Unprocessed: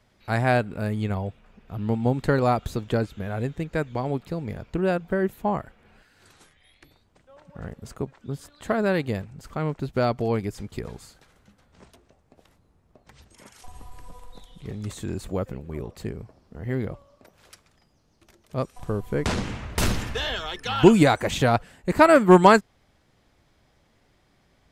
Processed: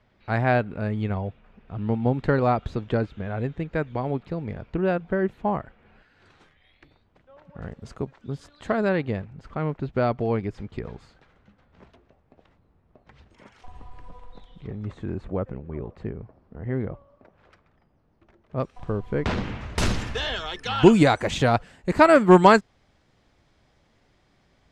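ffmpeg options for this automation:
-af "asetnsamples=n=441:p=0,asendcmd='7.62 lowpass f 5400;8.89 lowpass f 2900;14.67 lowpass f 1800;18.6 lowpass f 3500;19.61 lowpass f 7300',lowpass=3200"

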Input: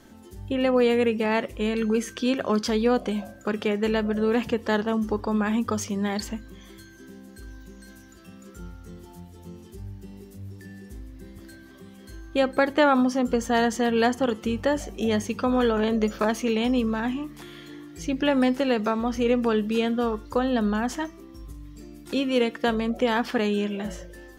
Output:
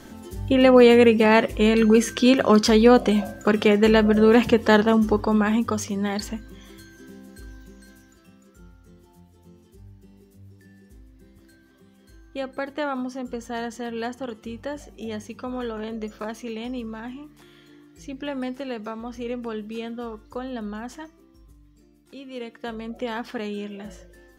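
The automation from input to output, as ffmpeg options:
-af "volume=7.08,afade=t=out:st=4.77:d=1.01:silence=0.473151,afade=t=out:st=7.33:d=1.15:silence=0.334965,afade=t=out:st=20.93:d=1.25:silence=0.421697,afade=t=in:st=22.18:d=0.86:silence=0.334965"

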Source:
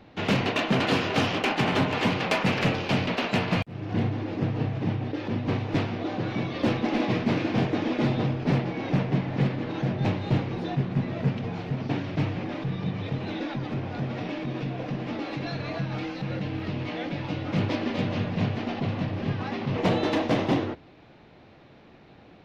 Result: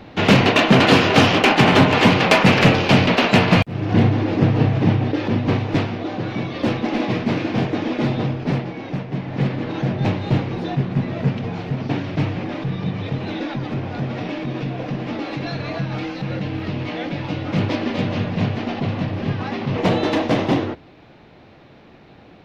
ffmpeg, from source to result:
-af "volume=9.44,afade=t=out:st=4.89:d=1.14:silence=0.446684,afade=t=out:st=8.31:d=0.75:silence=0.446684,afade=t=in:st=9.06:d=0.51:silence=0.375837"

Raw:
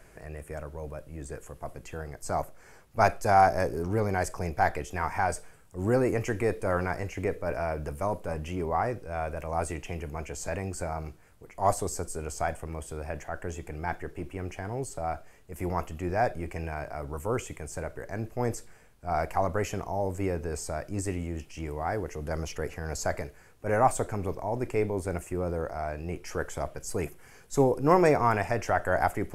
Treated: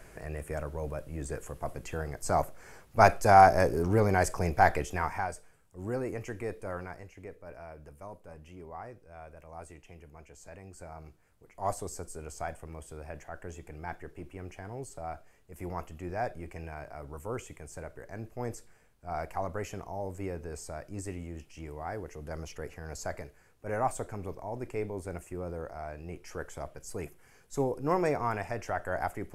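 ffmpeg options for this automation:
-af "volume=3.55,afade=t=out:st=4.8:d=0.51:silence=0.266073,afade=t=out:st=6.61:d=0.53:silence=0.473151,afade=t=in:st=10.59:d=1.13:silence=0.375837"

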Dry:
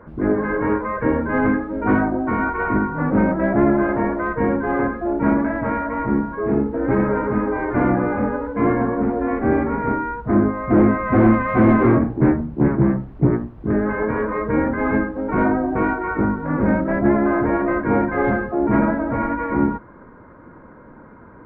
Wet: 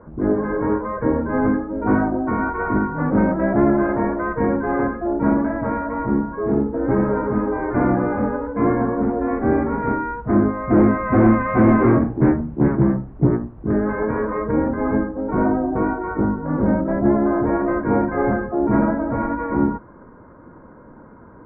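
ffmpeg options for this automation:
-af "asetnsamples=n=441:p=0,asendcmd='1.91 lowpass f 1500;2.77 lowpass f 1800;5.07 lowpass f 1400;7.65 lowpass f 1700;9.83 lowpass f 2200;12.84 lowpass f 1600;14.51 lowpass f 1100;17.47 lowpass f 1400',lowpass=1200"

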